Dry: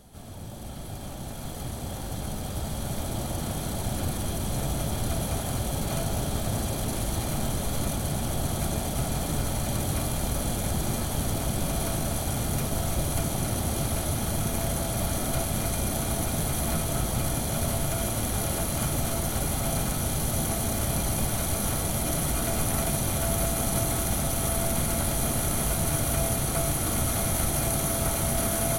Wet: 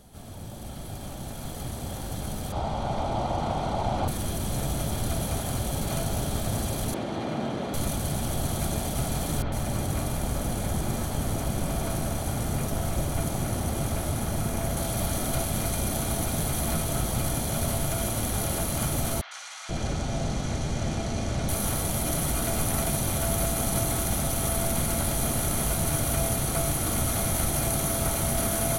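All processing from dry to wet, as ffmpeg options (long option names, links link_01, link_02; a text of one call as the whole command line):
ffmpeg -i in.wav -filter_complex "[0:a]asettb=1/sr,asplit=3[link_01][link_02][link_03];[link_01]atrim=end=2.524[link_04];[link_02]atrim=start=2.52:end=4.08,asetpts=PTS-STARTPTS,afade=type=in:duration=0.004:curve=qsin,afade=type=out:start_time=1.556:duration=0.004:curve=qsin,lowpass=4400,equalizer=frequency=830:width=1.3:gain=12,bandreject=frequency=1700:width=9.5[link_05];[link_03]atrim=start=4.076[link_06];[link_04][link_05]acrossfade=duration=0.004:curve1=hsin:curve2=qsin[link_07];[link_07][link_06]acrossfade=duration=0.004:curve1=qsin:curve2=hsin,asettb=1/sr,asplit=3[link_08][link_09][link_10];[link_08]atrim=end=6.944[link_11];[link_09]atrim=start=6.94:end=7.74,asetpts=PTS-STARTPTS,afade=type=in:duration=0.004:curve=qsin,afade=type=out:start_time=0.796:duration=0.004:curve=qsin,highpass=280,lowpass=3200,lowshelf=frequency=450:gain=9.5[link_12];[link_10]atrim=start=7.736[link_13];[link_11][link_12]acrossfade=duration=0.004:curve1=hsin:curve2=qsin[link_14];[link_14][link_13]acrossfade=duration=0.004:curve1=qsin:curve2=hsin,asettb=1/sr,asplit=3[link_15][link_16][link_17];[link_15]atrim=end=9.424[link_18];[link_16]atrim=start=9.42:end=14.77,asetpts=PTS-STARTPTS,afade=type=in:duration=0.004:curve=qsin,afade=type=out:start_time=5.346:duration=0.004:curve=qsin,highshelf=frequency=6700:gain=-5,acrossover=split=3700[link_19][link_20];[link_20]adelay=100[link_21];[link_19][link_21]amix=inputs=2:normalize=0,atrim=end_sample=235935[link_22];[link_17]atrim=start=14.766[link_23];[link_18][link_22]acrossfade=duration=0.004:curve1=hsin:curve2=qsin[link_24];[link_24][link_23]acrossfade=duration=0.004:curve1=qsin:curve2=hsin,asettb=1/sr,asplit=3[link_25][link_26][link_27];[link_25]atrim=end=19.214[link_28];[link_26]atrim=start=19.21:end=21.49,asetpts=PTS-STARTPTS,afade=type=in:duration=0.004:curve=qsin,afade=type=out:start_time=2.276:duration=0.004:curve=qsin,lowpass=frequency=6500:width=0.5412,lowpass=frequency=6500:width=1.3066,acrossover=split=1100|3700[link_29][link_30][link_31];[link_31]adelay=100[link_32];[link_29]adelay=480[link_33];[link_33][link_30][link_32]amix=inputs=3:normalize=0,atrim=end_sample=100548[link_34];[link_27]atrim=start=21.486[link_35];[link_28][link_34]acrossfade=duration=0.004:curve1=hsin:curve2=qsin[link_36];[link_36][link_35]acrossfade=duration=0.004:curve1=qsin:curve2=hsin" out.wav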